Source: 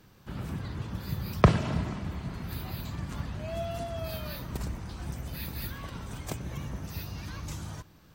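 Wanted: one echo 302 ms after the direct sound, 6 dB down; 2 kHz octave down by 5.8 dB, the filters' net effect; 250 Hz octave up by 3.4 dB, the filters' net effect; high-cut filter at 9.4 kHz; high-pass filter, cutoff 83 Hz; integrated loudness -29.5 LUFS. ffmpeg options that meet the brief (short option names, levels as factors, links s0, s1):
-af "highpass=83,lowpass=9400,equalizer=f=250:t=o:g=5.5,equalizer=f=2000:t=o:g=-7.5,aecho=1:1:302:0.501,volume=1.41"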